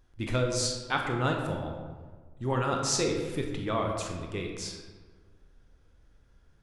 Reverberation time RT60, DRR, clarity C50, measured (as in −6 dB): 1.5 s, 1.5 dB, 3.5 dB